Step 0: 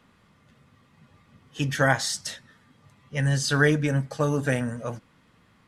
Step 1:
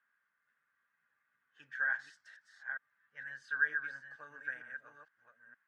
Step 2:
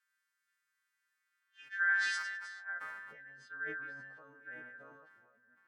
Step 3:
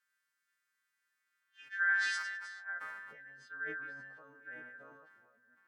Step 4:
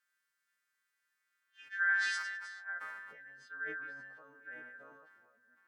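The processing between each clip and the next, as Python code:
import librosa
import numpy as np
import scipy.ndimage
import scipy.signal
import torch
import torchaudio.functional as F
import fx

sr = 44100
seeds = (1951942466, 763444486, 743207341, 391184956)

y1 = fx.reverse_delay(x, sr, ms=462, wet_db=-6.0)
y1 = fx.bandpass_q(y1, sr, hz=1600.0, q=12.0)
y1 = F.gain(torch.from_numpy(y1), -3.5).numpy()
y2 = fx.freq_snap(y1, sr, grid_st=2)
y2 = fx.filter_sweep_bandpass(y2, sr, from_hz=4900.0, to_hz=270.0, start_s=1.19, end_s=3.38, q=0.74)
y2 = fx.sustainer(y2, sr, db_per_s=32.0)
y3 = scipy.signal.sosfilt(scipy.signal.butter(2, 110.0, 'highpass', fs=sr, output='sos'), y2)
y4 = fx.low_shelf(y3, sr, hz=120.0, db=-10.5)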